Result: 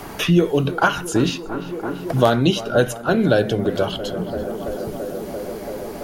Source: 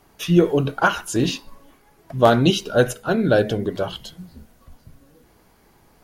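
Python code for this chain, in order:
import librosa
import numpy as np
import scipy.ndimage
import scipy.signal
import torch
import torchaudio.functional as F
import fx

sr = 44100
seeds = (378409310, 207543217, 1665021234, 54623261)

p1 = x + fx.echo_tape(x, sr, ms=337, feedback_pct=85, wet_db=-16.5, lp_hz=1700.0, drive_db=7.0, wow_cents=39, dry=0)
p2 = fx.band_squash(p1, sr, depth_pct=70)
y = p2 * 10.0 ** (1.5 / 20.0)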